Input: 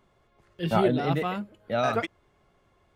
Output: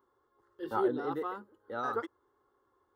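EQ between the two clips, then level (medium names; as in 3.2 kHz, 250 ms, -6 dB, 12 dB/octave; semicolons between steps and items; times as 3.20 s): high-pass 450 Hz 6 dB/octave; peaking EQ 7.2 kHz -15 dB 2.7 oct; static phaser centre 650 Hz, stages 6; 0.0 dB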